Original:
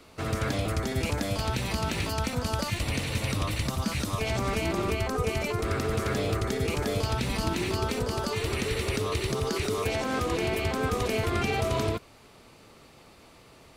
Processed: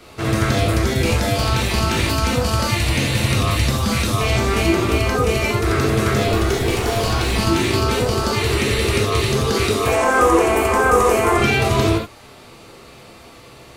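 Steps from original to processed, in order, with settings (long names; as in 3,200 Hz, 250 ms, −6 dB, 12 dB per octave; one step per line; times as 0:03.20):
0:06.27–0:07.32: lower of the sound and its delayed copy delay 2.7 ms
0:09.87–0:11.38: octave-band graphic EQ 125/500/1,000/4,000/8,000 Hz −12/+3/+9/−12/+7 dB
reverb whose tail is shaped and stops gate 100 ms flat, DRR −3 dB
level +6.5 dB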